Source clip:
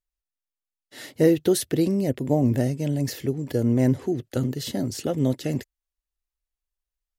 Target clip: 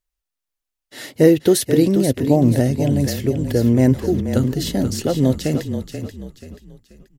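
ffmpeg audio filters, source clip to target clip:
ffmpeg -i in.wav -filter_complex "[0:a]asplit=5[link_01][link_02][link_03][link_04][link_05];[link_02]adelay=483,afreqshift=-33,volume=-8.5dB[link_06];[link_03]adelay=966,afreqshift=-66,volume=-17.4dB[link_07];[link_04]adelay=1449,afreqshift=-99,volume=-26.2dB[link_08];[link_05]adelay=1932,afreqshift=-132,volume=-35.1dB[link_09];[link_01][link_06][link_07][link_08][link_09]amix=inputs=5:normalize=0,volume=6dB" out.wav

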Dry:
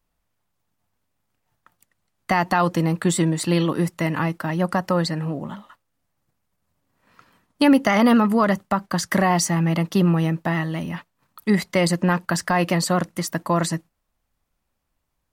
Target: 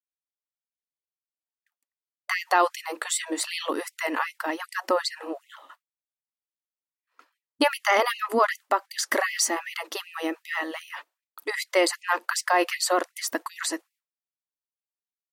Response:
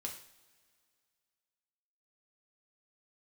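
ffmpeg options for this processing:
-af "agate=range=-33dB:threshold=-47dB:ratio=3:detection=peak,afftfilt=real='re*gte(b*sr/1024,240*pow(2000/240,0.5+0.5*sin(2*PI*2.6*pts/sr)))':imag='im*gte(b*sr/1024,240*pow(2000/240,0.5+0.5*sin(2*PI*2.6*pts/sr)))':win_size=1024:overlap=0.75"

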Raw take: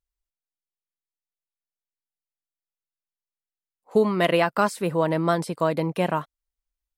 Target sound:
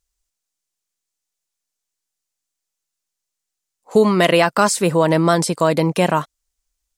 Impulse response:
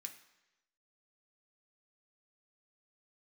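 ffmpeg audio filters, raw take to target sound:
-filter_complex "[0:a]equalizer=frequency=6900:width=0.94:gain=10.5,asplit=2[link_01][link_02];[link_02]alimiter=limit=-14.5dB:level=0:latency=1,volume=1.5dB[link_03];[link_01][link_03]amix=inputs=2:normalize=0,volume=1.5dB"

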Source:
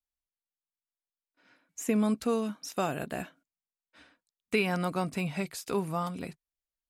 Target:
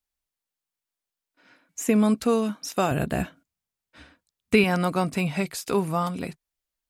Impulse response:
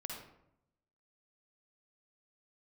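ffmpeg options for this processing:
-filter_complex "[0:a]asettb=1/sr,asplit=3[link_01][link_02][link_03];[link_01]atrim=end=2.914[link_04];[link_02]atrim=start=2.91:end=4.64,asetpts=PTS-STARTPTS,afade=type=in:duration=0.004:curve=qsin,afade=type=out:start_time=1.726:duration=0.004:curve=qsin,equalizer=frequency=72:width=0.56:gain=13.5[link_05];[link_03]atrim=start=4.636[link_06];[link_04][link_05]acrossfade=duration=0.004:curve1=hsin:curve2=qsin[link_07];[link_07][link_06]acrossfade=duration=0.004:curve1=qsin:curve2=hsin,volume=6.5dB"

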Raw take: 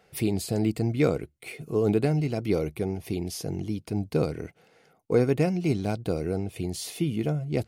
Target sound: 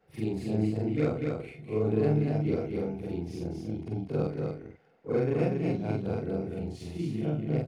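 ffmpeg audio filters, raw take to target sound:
ffmpeg -i in.wav -af "afftfilt=real='re':imag='-im':win_size=4096:overlap=0.75,adynamicsmooth=sensitivity=1:basefreq=2000,aemphasis=mode=production:type=50fm,aecho=1:1:241:0.668" out.wav

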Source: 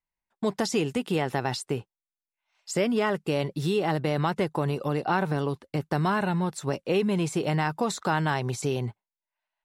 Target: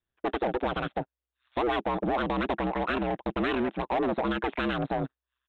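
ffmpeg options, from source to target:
ffmpeg -i in.wav -filter_complex "[0:a]equalizer=frequency=270:width_type=o:width=2.5:gain=6,asplit=2[link_01][link_02];[link_02]acompressor=threshold=-30dB:ratio=6,volume=-2dB[link_03];[link_01][link_03]amix=inputs=2:normalize=0,aeval=exprs='val(0)*sin(2*PI*36*n/s)':channel_layout=same,asetrate=77616,aresample=44100,aresample=8000,asoftclip=type=tanh:threshold=-22.5dB,aresample=44100,aeval=exprs='0.119*(cos(1*acos(clip(val(0)/0.119,-1,1)))-cos(1*PI/2))+0.00119*(cos(6*acos(clip(val(0)/0.119,-1,1)))-cos(6*PI/2))':channel_layout=same" out.wav

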